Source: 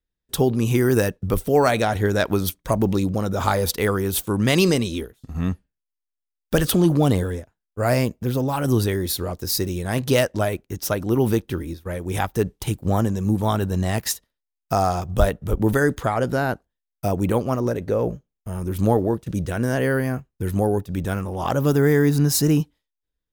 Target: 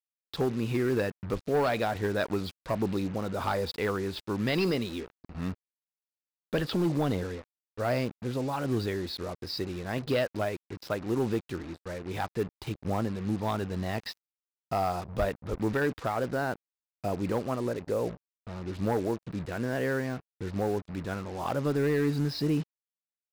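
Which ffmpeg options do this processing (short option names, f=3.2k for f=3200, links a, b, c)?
-af "lowshelf=f=110:g=-9.5,agate=range=-33dB:threshold=-44dB:ratio=3:detection=peak,aresample=11025,asoftclip=type=hard:threshold=-14dB,aresample=44100,acrusher=bits=5:mix=0:aa=0.5,equalizer=f=3.2k:w=6.3:g=-4,volume=-7dB"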